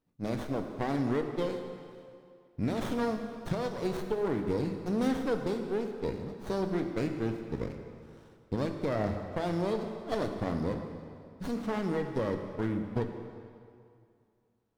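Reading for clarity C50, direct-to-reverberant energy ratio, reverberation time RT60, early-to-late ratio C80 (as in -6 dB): 6.0 dB, 4.5 dB, 2.3 s, 7.0 dB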